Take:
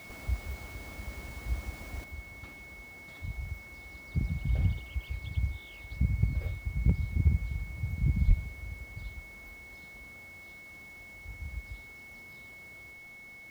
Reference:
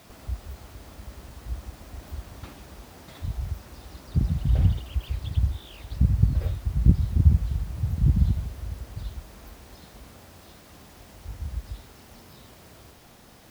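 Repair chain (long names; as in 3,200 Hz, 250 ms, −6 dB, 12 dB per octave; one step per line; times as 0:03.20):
clipped peaks rebuilt −14.5 dBFS
notch filter 2,200 Hz, Q 30
0:02.04: level correction +7.5 dB
0:08.27–0:08.39: high-pass filter 140 Hz 24 dB per octave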